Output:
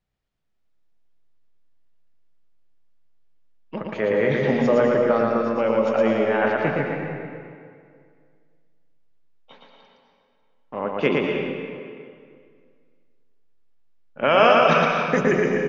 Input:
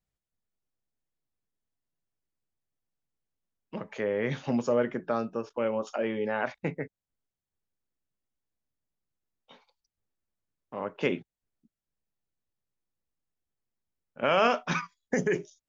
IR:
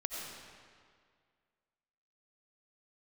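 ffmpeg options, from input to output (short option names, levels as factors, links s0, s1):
-filter_complex "[0:a]lowpass=4100,bandreject=f=60:t=h:w=6,bandreject=f=120:t=h:w=6,bandreject=f=180:t=h:w=6,bandreject=f=240:t=h:w=6,asplit=2[s0][s1];[s1]adelay=294,lowpass=f=1900:p=1,volume=0.178,asplit=2[s2][s3];[s3]adelay=294,lowpass=f=1900:p=1,volume=0.46,asplit=2[s4][s5];[s5]adelay=294,lowpass=f=1900:p=1,volume=0.46,asplit=2[s6][s7];[s7]adelay=294,lowpass=f=1900:p=1,volume=0.46[s8];[s0][s2][s4][s6][s8]amix=inputs=5:normalize=0,asplit=2[s9][s10];[1:a]atrim=start_sample=2205,adelay=115[s11];[s10][s11]afir=irnorm=-1:irlink=0,volume=0.944[s12];[s9][s12]amix=inputs=2:normalize=0,volume=2.11"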